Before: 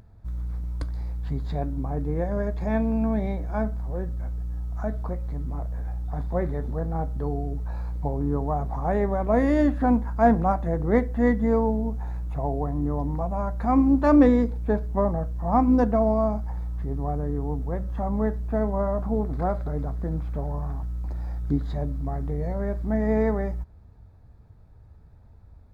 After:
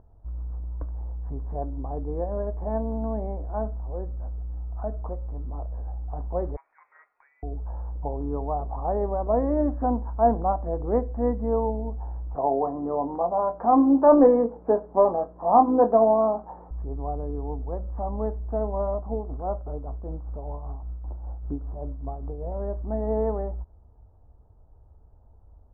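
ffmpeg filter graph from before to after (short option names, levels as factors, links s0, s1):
-filter_complex "[0:a]asettb=1/sr,asplit=3[s0][s1][s2];[s0]atrim=end=6.564[s3];[s1]atrim=start=6.56:end=7.43,asetpts=PTS-STARTPTS,afade=t=in:d=0.004:c=qsin,afade=t=out:st=0.866:d=0.004:c=qsin,highpass=840,lowpass=f=2300:t=q:w=0.5098,lowpass=f=2300:t=q:w=0.6013,lowpass=f=2300:t=q:w=0.9,lowpass=f=2300:t=q:w=2.563,afreqshift=-2700[s4];[s2]atrim=start=7.426[s5];[s3][s4]acrossfade=d=0.004:c1=hsin:c2=qsin[s6];[s6][s5]acrossfade=d=0.004:c1=qsin:c2=hsin,asettb=1/sr,asplit=3[s7][s8][s9];[s7]atrim=end=12.354[s10];[s8]atrim=start=12.35:end=16.71,asetpts=PTS-STARTPTS,afade=t=in:d=0.004:c=qsin,afade=t=out:st=4.356:d=0.004:c=qsin,highpass=250,asplit=2[s11][s12];[s12]adelay=22,volume=0.398[s13];[s11][s13]amix=inputs=2:normalize=0,atrim=end_sample=192276,acontrast=66[s14];[s9]atrim=start=16.706[s15];[s10][s14]acrossfade=d=0.004:c1=hsin:c2=qsin[s16];[s16][s15]acrossfade=d=0.004:c1=qsin:c2=hsin,asettb=1/sr,asplit=3[s17][s18][s19];[s17]atrim=end=18.944[s20];[s18]atrim=start=18.94:end=22.52,asetpts=PTS-STARTPTS,afade=t=in:d=0.004:c=qsin,afade=t=out:st=3.576:d=0.004:c=qsin,lowpass=f=1500:w=0.5412,lowpass=f=1500:w=1.3066,tremolo=f=5.1:d=0.45,acrusher=bits=8:mode=log:mix=0:aa=0.000001[s21];[s19]atrim=start=22.516[s22];[s20][s21]acrossfade=d=0.004:c1=hsin:c2=qsin[s23];[s23][s22]acrossfade=d=0.004:c1=qsin:c2=hsin,lowpass=f=1000:w=0.5412,lowpass=f=1000:w=1.3066,equalizer=f=150:w=0.82:g=-13.5,volume=1.19"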